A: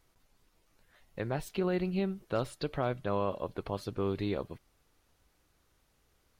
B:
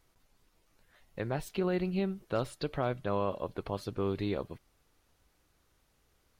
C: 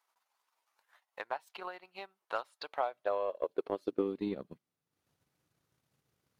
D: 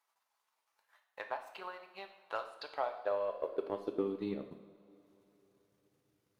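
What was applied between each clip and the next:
no processing that can be heard
high-pass filter sweep 910 Hz → 130 Hz, 0:02.64–0:04.94; transient designer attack +9 dB, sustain −10 dB; level −8.5 dB
convolution reverb, pre-delay 3 ms, DRR 5 dB; level −3 dB

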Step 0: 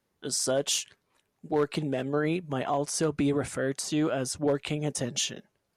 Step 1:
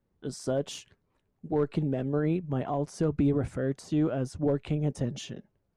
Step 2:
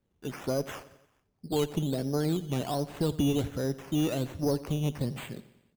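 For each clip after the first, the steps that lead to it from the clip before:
spectral tilt −3.5 dB per octave; level −5.5 dB
one-sided soft clipper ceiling −18.5 dBFS; sample-and-hold swept by an LFO 11×, swing 60% 1.3 Hz; repeating echo 88 ms, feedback 58%, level −18 dB

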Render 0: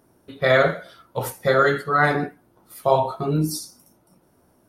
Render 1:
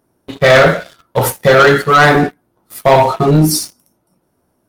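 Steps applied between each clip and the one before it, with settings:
leveller curve on the samples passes 3
level +3 dB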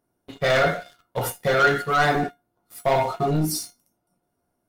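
tuned comb filter 710 Hz, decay 0.19 s, harmonics all, mix 80%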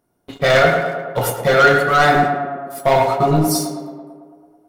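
tape delay 109 ms, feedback 75%, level −5.5 dB, low-pass 2,100 Hz
level +6 dB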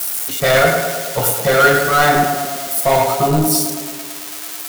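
spike at every zero crossing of −12.5 dBFS

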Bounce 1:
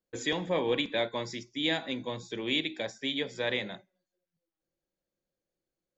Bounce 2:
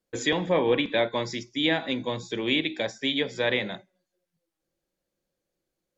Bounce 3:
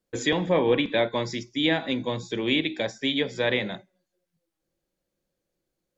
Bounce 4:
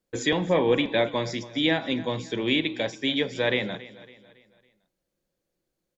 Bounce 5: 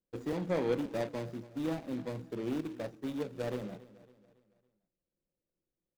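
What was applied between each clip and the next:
treble cut that deepens with the level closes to 2,800 Hz, closed at −24.5 dBFS; level +6 dB
low-shelf EQ 330 Hz +3.5 dB
repeating echo 278 ms, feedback 43%, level −18 dB
running median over 41 samples; level −8 dB

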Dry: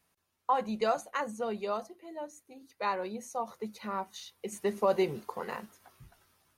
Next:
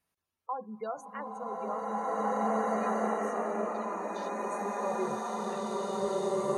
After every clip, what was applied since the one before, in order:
echo through a band-pass that steps 467 ms, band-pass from 230 Hz, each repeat 1.4 octaves, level −6.5 dB
gate on every frequency bin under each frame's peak −20 dB strong
slow-attack reverb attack 2,010 ms, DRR −10.5 dB
level −8 dB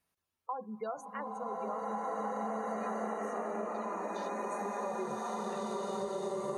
downward compressor, threshold −33 dBFS, peak gain reduction 8 dB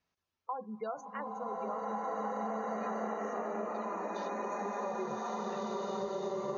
Butterworth low-pass 6,600 Hz 96 dB per octave

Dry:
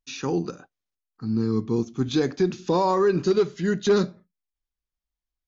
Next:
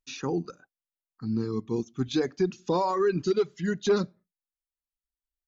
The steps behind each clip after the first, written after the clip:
reverb reduction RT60 1.7 s
level −3 dB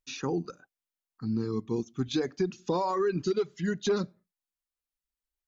downward compressor 2 to 1, threshold −26 dBFS, peak gain reduction 4.5 dB

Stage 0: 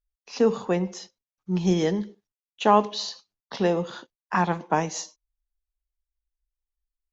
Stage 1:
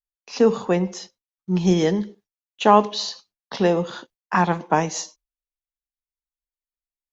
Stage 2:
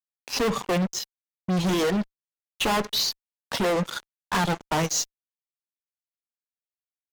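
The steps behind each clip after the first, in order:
noise gate with hold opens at −50 dBFS; level +4 dB
reverb reduction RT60 2 s; fuzz pedal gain 32 dB, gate −40 dBFS; level −8 dB

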